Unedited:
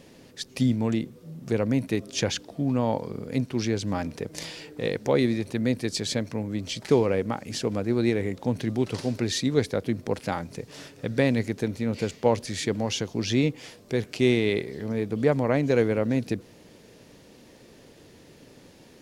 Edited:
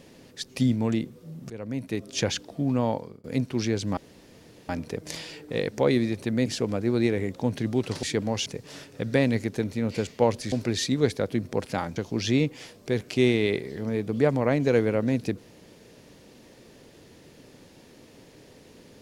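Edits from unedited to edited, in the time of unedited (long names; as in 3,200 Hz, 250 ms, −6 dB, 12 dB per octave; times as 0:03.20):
0:01.50–0:02.23: fade in, from −17 dB
0:02.86–0:03.24: fade out
0:03.97: splice in room tone 0.72 s
0:05.74–0:07.49: remove
0:09.06–0:10.50: swap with 0:12.56–0:12.99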